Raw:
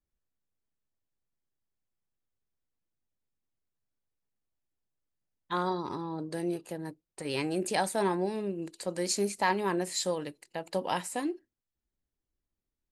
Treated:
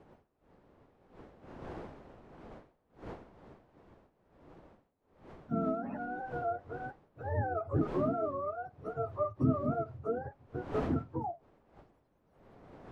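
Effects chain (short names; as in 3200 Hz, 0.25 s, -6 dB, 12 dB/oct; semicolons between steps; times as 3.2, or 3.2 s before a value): spectrum mirrored in octaves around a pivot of 490 Hz; wind noise 590 Hz -49 dBFS; ending taper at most 360 dB/s; gain -1.5 dB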